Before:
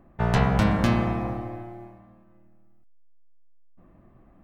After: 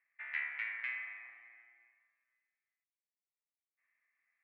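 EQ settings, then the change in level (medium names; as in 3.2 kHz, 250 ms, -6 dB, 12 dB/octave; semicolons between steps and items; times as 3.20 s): Butterworth band-pass 2.1 kHz, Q 3.9; distance through air 54 m; +1.0 dB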